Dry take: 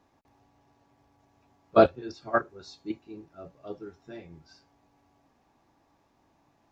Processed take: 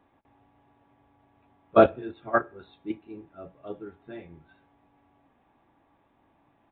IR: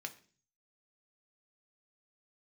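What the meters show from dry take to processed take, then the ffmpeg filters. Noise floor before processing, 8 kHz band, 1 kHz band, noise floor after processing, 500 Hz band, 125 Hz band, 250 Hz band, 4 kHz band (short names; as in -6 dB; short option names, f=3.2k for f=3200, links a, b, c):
-68 dBFS, n/a, +1.5 dB, -67 dBFS, +1.5 dB, +1.0 dB, +1.5 dB, -3.5 dB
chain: -filter_complex "[0:a]asplit=2[a][b];[1:a]atrim=start_sample=2205,lowpass=4k[c];[b][c]afir=irnorm=-1:irlink=0,volume=-8.5dB[d];[a][d]amix=inputs=2:normalize=0,aresample=8000,aresample=44100"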